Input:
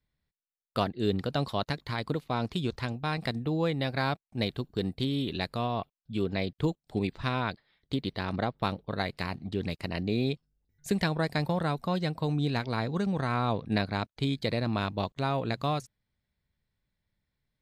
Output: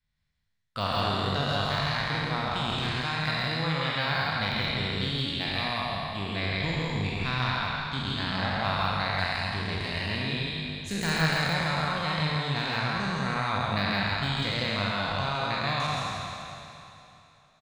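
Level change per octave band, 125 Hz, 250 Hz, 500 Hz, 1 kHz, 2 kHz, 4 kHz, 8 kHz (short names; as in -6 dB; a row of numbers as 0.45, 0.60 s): +1.5, -2.0, -1.5, +4.5, +8.5, +9.0, +7.5 dB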